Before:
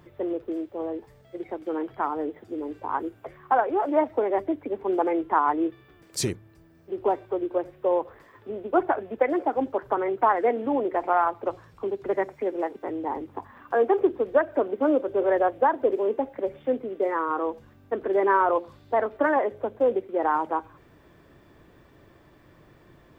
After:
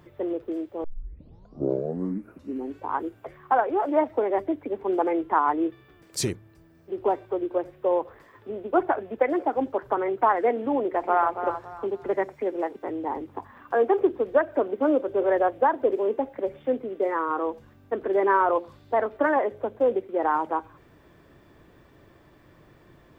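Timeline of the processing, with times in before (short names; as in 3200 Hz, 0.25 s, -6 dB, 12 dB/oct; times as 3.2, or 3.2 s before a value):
0.84 tape start 2.02 s
10.8–11.36 echo throw 0.28 s, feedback 30%, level -9 dB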